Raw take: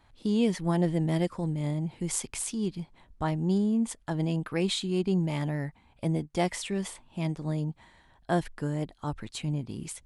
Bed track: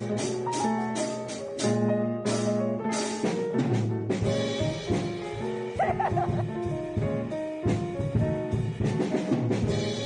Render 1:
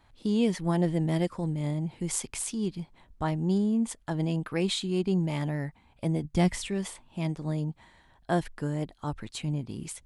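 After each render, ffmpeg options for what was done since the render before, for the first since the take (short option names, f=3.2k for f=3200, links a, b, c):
-filter_complex "[0:a]asplit=3[a][b][c];[a]afade=t=out:st=6.23:d=0.02[d];[b]asubboost=boost=4:cutoff=230,afade=t=in:st=6.23:d=0.02,afade=t=out:st=6.68:d=0.02[e];[c]afade=t=in:st=6.68:d=0.02[f];[d][e][f]amix=inputs=3:normalize=0"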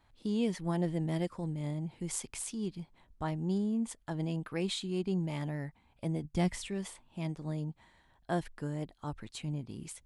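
-af "volume=-6dB"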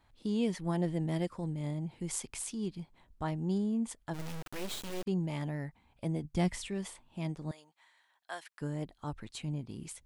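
-filter_complex "[0:a]asplit=3[a][b][c];[a]afade=t=out:st=4.13:d=0.02[d];[b]acrusher=bits=4:dc=4:mix=0:aa=0.000001,afade=t=in:st=4.13:d=0.02,afade=t=out:st=5.06:d=0.02[e];[c]afade=t=in:st=5.06:d=0.02[f];[d][e][f]amix=inputs=3:normalize=0,asettb=1/sr,asplit=3[g][h][i];[g]atrim=end=7.514[j];[h]atrim=start=7.51:end=8.61,asetpts=PTS-STARTPTS,afade=t=in:d=0.004:c=qsin,afade=t=out:st=1.096:d=0.004:c=qsin,highpass=1.1k[k];[i]atrim=start=8.606[l];[j][k]acrossfade=d=0.004:c1=hsin:c2=qsin[m];[m][l]acrossfade=d=0.004:c1=qsin:c2=hsin"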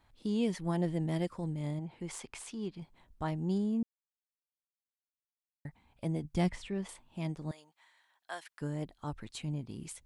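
-filter_complex "[0:a]asettb=1/sr,asplit=3[a][b][c];[a]atrim=end=1.794[d];[b]atrim=start=1.79:end=2.82,asetpts=PTS-STARTPTS,afade=t=in:d=0.004:c=qsin,afade=t=out:st=1.026:d=0.004:c=qsin,asplit=2[e][f];[f]highpass=f=720:p=1,volume=9dB,asoftclip=type=tanh:threshold=-17dB[g];[e][g]amix=inputs=2:normalize=0,lowpass=f=1.7k:p=1,volume=-6dB[h];[c]atrim=start=2.816[i];[d][h]acrossfade=d=0.004:c1=hsin:c2=qsin[j];[j][i]acrossfade=d=0.004:c1=qsin:c2=hsin,asettb=1/sr,asplit=3[k][l][m];[k]atrim=end=6.494[n];[l]atrim=start=6.49:end=6.89,asetpts=PTS-STARTPTS,afade=t=in:d=0.004:c=qsin,afade=t=out:st=0.396:d=0.004:c=qsin,aemphasis=mode=reproduction:type=75fm[o];[m]atrim=start=6.886[p];[n][o]acrossfade=d=0.004:c1=hsin:c2=qsin[q];[q][p]acrossfade=d=0.004:c1=qsin:c2=hsin,asplit=3[r][s][t];[r]atrim=end=3.83,asetpts=PTS-STARTPTS,afade=t=out:st=3.826:d=0.004:c=hsin[u];[s]atrim=start=3.83:end=5.65,asetpts=PTS-STARTPTS,volume=0[v];[t]atrim=start=5.65,asetpts=PTS-STARTPTS,afade=t=in:d=0.004:c=hsin[w];[u][v][w]concat=n=3:v=0:a=1"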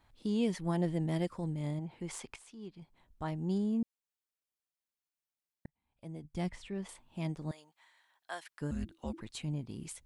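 -filter_complex "[0:a]asettb=1/sr,asplit=3[a][b][c];[a]atrim=end=8.714[d];[b]atrim=start=8.71:end=9.21,asetpts=PTS-STARTPTS,afade=t=in:d=0.004:c=qsin,afade=t=out:st=0.496:d=0.004:c=qsin,afreqshift=-360[e];[c]atrim=start=9.206[f];[d][e]acrossfade=d=0.004:c1=hsin:c2=qsin[g];[g][f]acrossfade=d=0.004:c1=qsin:c2=hsin,asplit=3[h][i][j];[h]atrim=end=2.36,asetpts=PTS-STARTPTS,afade=t=out:st=2.356:d=0.004:c=hsin:silence=0.237137[k];[i]atrim=start=2.36:end=5.66,asetpts=PTS-STARTPTS,afade=t=in:d=1.35:silence=0.237137,afade=t=out:st=3.296:d=0.004:c=hsin[l];[j]atrim=start=5.66,asetpts=PTS-STARTPTS,afade=t=in:d=1.54[m];[k][l][m]concat=n=3:v=0:a=1"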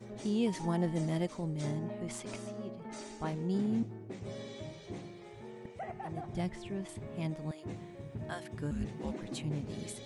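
-filter_complex "[1:a]volume=-16.5dB[a];[0:a][a]amix=inputs=2:normalize=0"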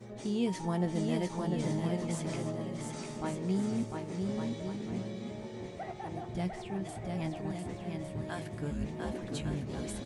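-filter_complex "[0:a]asplit=2[a][b];[b]adelay=16,volume=-11dB[c];[a][c]amix=inputs=2:normalize=0,aecho=1:1:700|1155|1451|1643|1768:0.631|0.398|0.251|0.158|0.1"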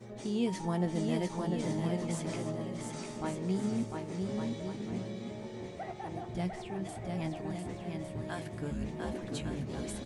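-af "bandreject=f=50:t=h:w=6,bandreject=f=100:t=h:w=6,bandreject=f=150:t=h:w=6,bandreject=f=200:t=h:w=6"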